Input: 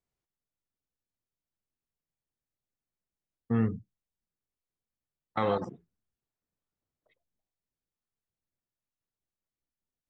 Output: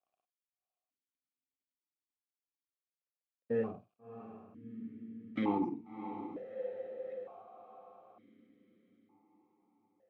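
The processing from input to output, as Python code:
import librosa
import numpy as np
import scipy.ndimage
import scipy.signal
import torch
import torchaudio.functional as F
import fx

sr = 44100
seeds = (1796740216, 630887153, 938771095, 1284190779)

p1 = fx.law_mismatch(x, sr, coded='mu')
p2 = fx.tilt_shelf(p1, sr, db=4.5, hz=1100.0)
p3 = 10.0 ** (-26.5 / 20.0) * np.tanh(p2 / 10.0 ** (-26.5 / 20.0))
p4 = p2 + (p3 * librosa.db_to_amplitude(-5.0))
p5 = fx.doubler(p4, sr, ms=50.0, db=-12.0)
p6 = p5 + fx.echo_diffused(p5, sr, ms=663, feedback_pct=51, wet_db=-10, dry=0)
p7 = fx.vowel_held(p6, sr, hz=1.1)
y = p7 * librosa.db_to_amplitude(5.0)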